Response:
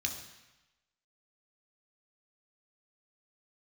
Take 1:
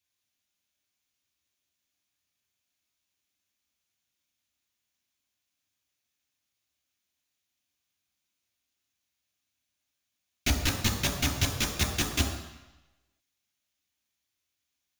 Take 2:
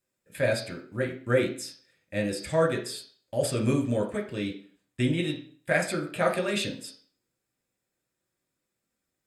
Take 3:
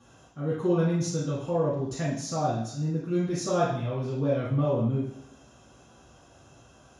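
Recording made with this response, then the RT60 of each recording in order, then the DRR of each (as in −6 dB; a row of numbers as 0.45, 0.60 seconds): 1; 1.0, 0.45, 0.70 seconds; 2.5, 0.5, −9.5 decibels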